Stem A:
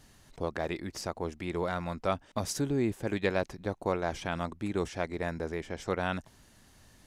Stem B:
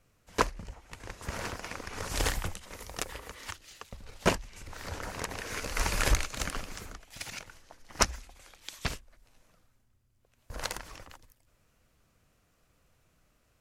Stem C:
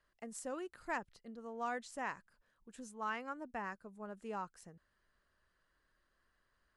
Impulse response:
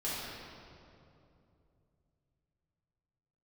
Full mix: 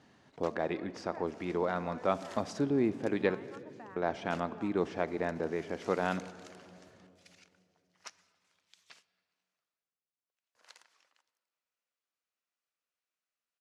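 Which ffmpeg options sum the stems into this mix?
-filter_complex "[0:a]volume=1.12,asplit=3[s0][s1][s2];[s0]atrim=end=3.35,asetpts=PTS-STARTPTS,afade=t=out:st=3.346:d=0.004:c=hsin[s3];[s1]atrim=start=3.35:end=3.96,asetpts=PTS-STARTPTS,volume=0[s4];[s2]atrim=start=3.96,asetpts=PTS-STARTPTS,afade=t=in:d=0.004:c=hsin[s5];[s3][s4][s5]concat=n=3:v=0:a=1,asplit=2[s6][s7];[s7]volume=0.112[s8];[1:a]acontrast=85,aderivative,adelay=50,volume=0.224,asplit=2[s9][s10];[s10]volume=0.075[s11];[2:a]acompressor=threshold=0.00398:ratio=6,lowpass=3600,adelay=250,volume=1.26[s12];[3:a]atrim=start_sample=2205[s13];[s8][s11]amix=inputs=2:normalize=0[s14];[s14][s13]afir=irnorm=-1:irlink=0[s15];[s6][s9][s12][s15]amix=inputs=4:normalize=0,highpass=180,lowpass=5000,highshelf=f=2400:g=-9"

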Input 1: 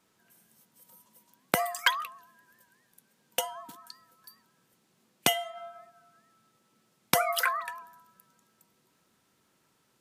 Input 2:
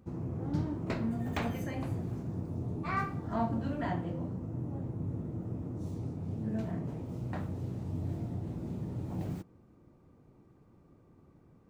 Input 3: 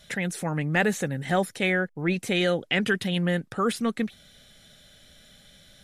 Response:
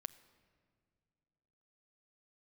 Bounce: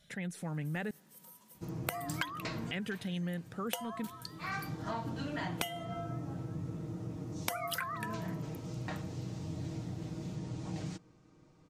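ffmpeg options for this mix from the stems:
-filter_complex "[0:a]adelay=350,volume=1.19[s0];[1:a]crystalizer=i=8:c=0,lowpass=f=6600:w=0.5412,lowpass=f=6600:w=1.3066,aecho=1:1:6.4:0.53,adelay=1550,volume=0.596,asplit=2[s1][s2];[s2]volume=0.0708[s3];[2:a]equalizer=f=160:w=0.94:g=5.5,volume=0.188,asplit=3[s4][s5][s6];[s4]atrim=end=0.91,asetpts=PTS-STARTPTS,afade=t=out:st=0.906:d=0.004:c=hsin[s7];[s5]atrim=start=0.91:end=2.68,asetpts=PTS-STARTPTS,volume=0[s8];[s6]atrim=start=2.68,asetpts=PTS-STARTPTS,afade=t=in:d=0.004:c=hsin[s9];[s7][s8][s9]concat=n=3:v=0:a=1,asplit=3[s10][s11][s12];[s11]volume=0.299[s13];[s12]apad=whole_len=584343[s14];[s1][s14]sidechaincompress=threshold=0.00126:ratio=8:attack=16:release=390[s15];[3:a]atrim=start_sample=2205[s16];[s3][s13]amix=inputs=2:normalize=0[s17];[s17][s16]afir=irnorm=-1:irlink=0[s18];[s0][s15][s10][s18]amix=inputs=4:normalize=0,acompressor=threshold=0.0224:ratio=10"

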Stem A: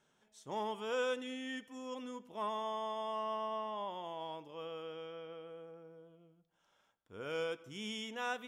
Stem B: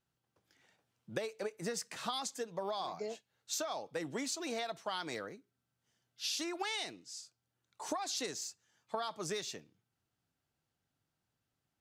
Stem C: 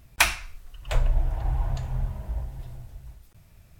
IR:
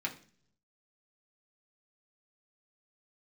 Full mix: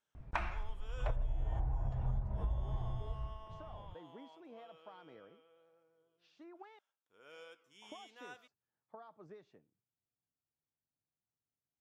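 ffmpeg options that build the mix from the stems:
-filter_complex "[0:a]highpass=f=790:p=1,flanger=delay=9.4:depth=8.1:regen=87:speed=1.2:shape=sinusoidal,volume=0.398[s0];[1:a]volume=0.2,asplit=3[s1][s2][s3];[s1]atrim=end=6.79,asetpts=PTS-STARTPTS,afade=t=out:st=6.786:d=0.004:c=hsin[s4];[s2]atrim=start=6.79:end=7.82,asetpts=PTS-STARTPTS,volume=0[s5];[s3]atrim=start=7.82,asetpts=PTS-STARTPTS,afade=t=in:d=0.004:c=hsin[s6];[s4][s5][s6]concat=n=3:v=0:a=1[s7];[2:a]adelay=150,volume=1.19[s8];[s7][s8]amix=inputs=2:normalize=0,lowpass=1200,alimiter=limit=0.126:level=0:latency=1:release=207,volume=1[s9];[s0][s9]amix=inputs=2:normalize=0,acompressor=threshold=0.0282:ratio=10"

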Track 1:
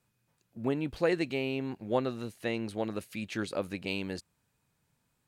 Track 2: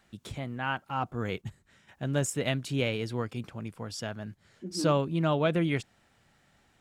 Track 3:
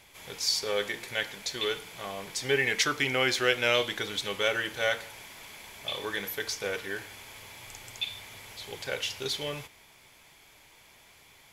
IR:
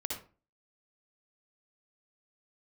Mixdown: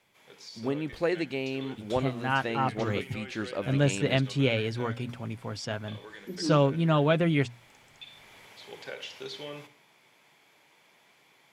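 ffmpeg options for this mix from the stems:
-filter_complex "[0:a]volume=1[s0];[1:a]aecho=1:1:7.4:0.32,adelay=1650,volume=1.33[s1];[2:a]highpass=f=140:w=0.5412,highpass=f=140:w=1.3066,highshelf=f=4800:g=-10.5,acompressor=threshold=0.0224:ratio=3,volume=0.596,afade=t=in:st=7.99:d=0.46:silence=0.446684,asplit=2[s2][s3];[s3]volume=0.299[s4];[3:a]atrim=start_sample=2205[s5];[s4][s5]afir=irnorm=-1:irlink=0[s6];[s0][s1][s2][s6]amix=inputs=4:normalize=0,acrossover=split=6700[s7][s8];[s8]acompressor=threshold=0.00112:ratio=4:attack=1:release=60[s9];[s7][s9]amix=inputs=2:normalize=0,bandreject=f=60:t=h:w=6,bandreject=f=120:t=h:w=6,bandreject=f=180:t=h:w=6,bandreject=f=240:t=h:w=6"

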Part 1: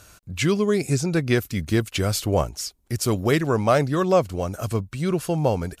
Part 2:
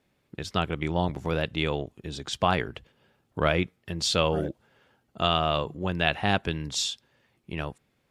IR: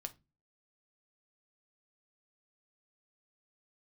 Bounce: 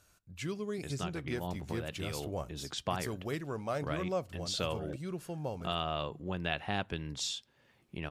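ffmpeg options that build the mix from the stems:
-filter_complex "[0:a]volume=0.1,asplit=3[s0][s1][s2];[s1]volume=0.668[s3];[1:a]acompressor=threshold=0.00355:ratio=1.5,adelay=450,volume=0.891,asplit=2[s4][s5];[s5]volume=0.282[s6];[s2]apad=whole_len=377278[s7];[s4][s7]sidechaincompress=threshold=0.00501:ratio=8:attack=48:release=229[s8];[2:a]atrim=start_sample=2205[s9];[s3][s6]amix=inputs=2:normalize=0[s10];[s10][s9]afir=irnorm=-1:irlink=0[s11];[s0][s8][s11]amix=inputs=3:normalize=0"

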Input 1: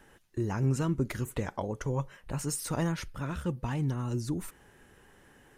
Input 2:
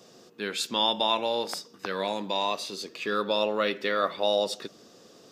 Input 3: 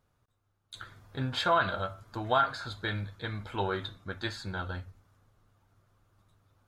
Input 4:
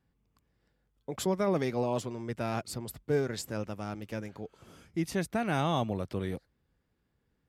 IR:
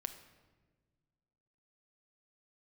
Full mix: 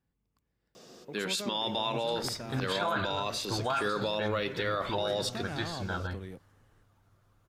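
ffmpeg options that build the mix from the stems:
-filter_complex "[0:a]lowpass=10000,adelay=1250,volume=0.224[s0];[1:a]adelay=750,volume=1.12[s1];[2:a]adelay=1350,volume=1.12[s2];[3:a]acompressor=threshold=0.0141:ratio=1.5,volume=0.501[s3];[s0][s1][s2][s3]amix=inputs=4:normalize=0,alimiter=limit=0.0891:level=0:latency=1:release=47"

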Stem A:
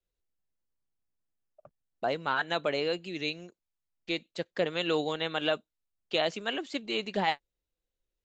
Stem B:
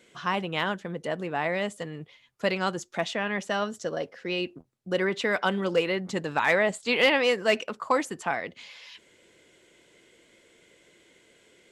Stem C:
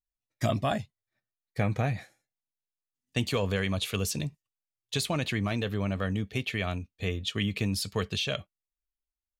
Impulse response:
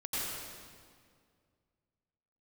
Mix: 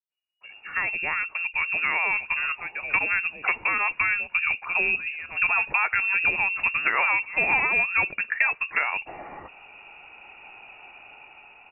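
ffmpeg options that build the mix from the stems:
-filter_complex "[0:a]flanger=delay=5.1:depth=2:regen=72:speed=0.68:shape=sinusoidal,adelay=100,volume=1.12[s0];[1:a]dynaudnorm=f=400:g=7:m=3.55,lowshelf=f=210:g=8,adelay=500,volume=1.26[s1];[2:a]volume=0.106[s2];[s0][s1][s2]amix=inputs=3:normalize=0,acrossover=split=260|1900[s3][s4][s5];[s3]acompressor=threshold=0.02:ratio=4[s6];[s4]acompressor=threshold=0.0631:ratio=4[s7];[s5]acompressor=threshold=0.0224:ratio=4[s8];[s6][s7][s8]amix=inputs=3:normalize=0,lowpass=f=2500:t=q:w=0.5098,lowpass=f=2500:t=q:w=0.6013,lowpass=f=2500:t=q:w=0.9,lowpass=f=2500:t=q:w=2.563,afreqshift=-2900"

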